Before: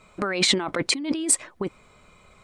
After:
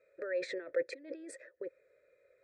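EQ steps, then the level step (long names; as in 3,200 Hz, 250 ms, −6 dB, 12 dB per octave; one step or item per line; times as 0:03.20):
formant filter e
high-shelf EQ 10,000 Hz −9 dB
phaser with its sweep stopped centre 800 Hz, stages 6
+1.0 dB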